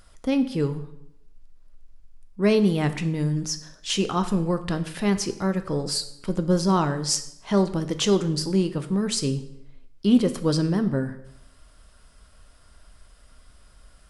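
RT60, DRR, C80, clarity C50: 0.80 s, 9.0 dB, 15.5 dB, 13.0 dB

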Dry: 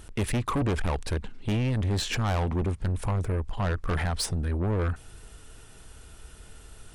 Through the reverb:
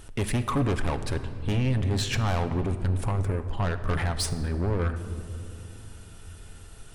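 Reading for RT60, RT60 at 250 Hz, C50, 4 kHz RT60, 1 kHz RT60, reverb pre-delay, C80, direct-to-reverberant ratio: 2.8 s, 4.2 s, 11.5 dB, 1.4 s, 2.4 s, 7 ms, 12.5 dB, 8.0 dB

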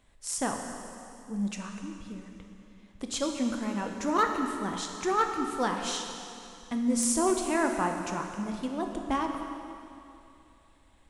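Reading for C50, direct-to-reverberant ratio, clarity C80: 4.5 dB, 3.0 dB, 5.5 dB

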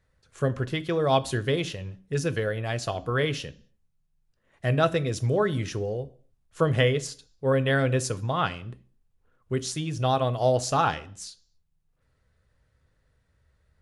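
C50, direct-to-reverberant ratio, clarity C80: 20.0 dB, 11.0 dB, 23.5 dB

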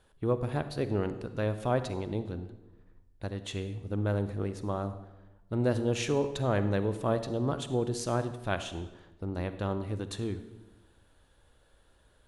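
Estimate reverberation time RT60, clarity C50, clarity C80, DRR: 1.1 s, 11.5 dB, 13.5 dB, 11.0 dB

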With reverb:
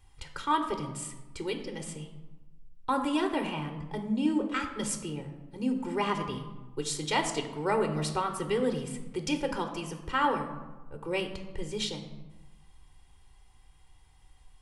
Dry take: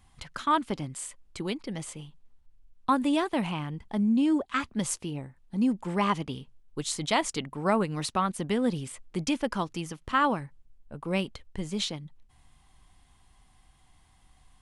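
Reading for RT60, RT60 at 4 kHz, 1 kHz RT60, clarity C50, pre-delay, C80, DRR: 1.2 s, 0.70 s, 1.2 s, 9.0 dB, 3 ms, 11.0 dB, 6.0 dB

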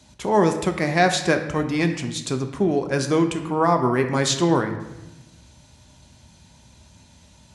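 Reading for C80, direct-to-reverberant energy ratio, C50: 11.0 dB, 5.5 dB, 9.0 dB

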